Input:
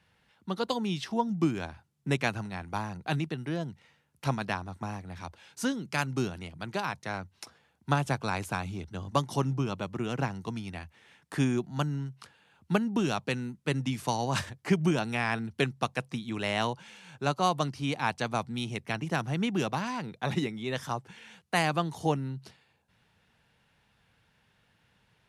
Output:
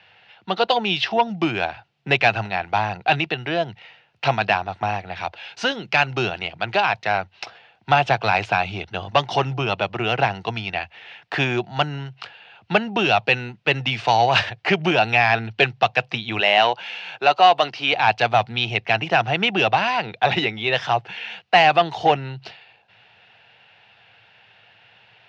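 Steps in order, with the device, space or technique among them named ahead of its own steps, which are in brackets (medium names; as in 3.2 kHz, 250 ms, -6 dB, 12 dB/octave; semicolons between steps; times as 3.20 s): overdrive pedal into a guitar cabinet (overdrive pedal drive 16 dB, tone 7.2 kHz, clips at -11 dBFS; cabinet simulation 85–4500 Hz, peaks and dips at 110 Hz +9 dB, 160 Hz -4 dB, 260 Hz -10 dB, 720 Hz +8 dB, 1.1 kHz -5 dB, 2.7 kHz +7 dB); 16.40–17.93 s: high-pass 250 Hz 12 dB/octave; trim +5 dB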